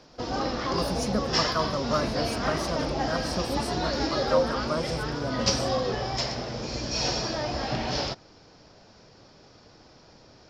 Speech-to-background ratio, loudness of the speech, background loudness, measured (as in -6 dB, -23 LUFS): -4.5 dB, -33.0 LUFS, -28.5 LUFS